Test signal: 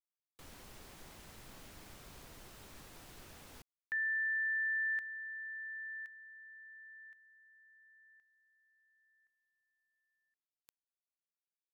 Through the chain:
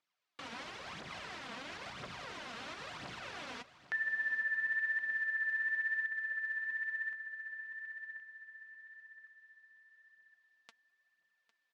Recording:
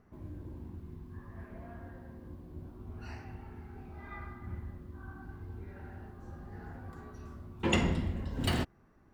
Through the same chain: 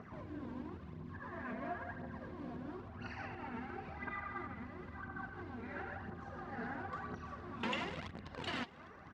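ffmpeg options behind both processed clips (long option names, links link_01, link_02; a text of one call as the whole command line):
ffmpeg -i in.wav -filter_complex "[0:a]bandreject=frequency=860:width=17,asplit=2[link_01][link_02];[link_02]acrusher=bits=4:mix=0:aa=0.000001,volume=-4dB[link_03];[link_01][link_03]amix=inputs=2:normalize=0,equalizer=frequency=340:width_type=o:width=1.7:gain=-9,acontrast=67,aemphasis=mode=reproduction:type=50fm,aphaser=in_gain=1:out_gain=1:delay=4.5:decay=0.58:speed=0.98:type=triangular,acompressor=threshold=-40dB:ratio=10:attack=0.66:release=194:knee=6:detection=peak,highpass=210,lowpass=5100,aecho=1:1:804|1608|2412|3216:0.15|0.0748|0.0374|0.0187,volume=9dB" out.wav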